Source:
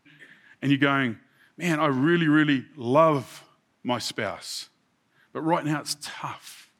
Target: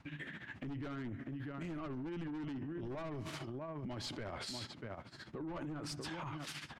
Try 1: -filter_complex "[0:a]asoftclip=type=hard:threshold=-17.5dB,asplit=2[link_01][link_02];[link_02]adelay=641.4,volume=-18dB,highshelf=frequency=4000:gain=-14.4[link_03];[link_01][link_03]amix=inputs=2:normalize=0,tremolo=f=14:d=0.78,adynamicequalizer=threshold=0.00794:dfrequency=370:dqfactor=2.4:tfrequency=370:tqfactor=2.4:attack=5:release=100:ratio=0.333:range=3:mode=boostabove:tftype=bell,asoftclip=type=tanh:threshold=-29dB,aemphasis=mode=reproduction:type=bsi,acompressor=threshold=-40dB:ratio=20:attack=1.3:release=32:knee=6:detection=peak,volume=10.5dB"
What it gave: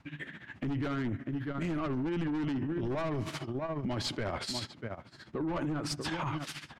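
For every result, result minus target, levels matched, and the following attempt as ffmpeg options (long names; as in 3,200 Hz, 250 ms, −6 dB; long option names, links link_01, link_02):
hard clipping: distortion +16 dB; downward compressor: peak gain reduction −9.5 dB
-filter_complex "[0:a]asoftclip=type=hard:threshold=-10.5dB,asplit=2[link_01][link_02];[link_02]adelay=641.4,volume=-18dB,highshelf=frequency=4000:gain=-14.4[link_03];[link_01][link_03]amix=inputs=2:normalize=0,tremolo=f=14:d=0.78,adynamicequalizer=threshold=0.00794:dfrequency=370:dqfactor=2.4:tfrequency=370:tqfactor=2.4:attack=5:release=100:ratio=0.333:range=3:mode=boostabove:tftype=bell,asoftclip=type=tanh:threshold=-29dB,aemphasis=mode=reproduction:type=bsi,acompressor=threshold=-40dB:ratio=20:attack=1.3:release=32:knee=6:detection=peak,volume=10.5dB"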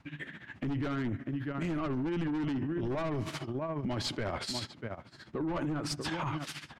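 downward compressor: peak gain reduction −9.5 dB
-filter_complex "[0:a]asoftclip=type=hard:threshold=-10.5dB,asplit=2[link_01][link_02];[link_02]adelay=641.4,volume=-18dB,highshelf=frequency=4000:gain=-14.4[link_03];[link_01][link_03]amix=inputs=2:normalize=0,tremolo=f=14:d=0.78,adynamicequalizer=threshold=0.00794:dfrequency=370:dqfactor=2.4:tfrequency=370:tqfactor=2.4:attack=5:release=100:ratio=0.333:range=3:mode=boostabove:tftype=bell,asoftclip=type=tanh:threshold=-29dB,aemphasis=mode=reproduction:type=bsi,acompressor=threshold=-50dB:ratio=20:attack=1.3:release=32:knee=6:detection=peak,volume=10.5dB"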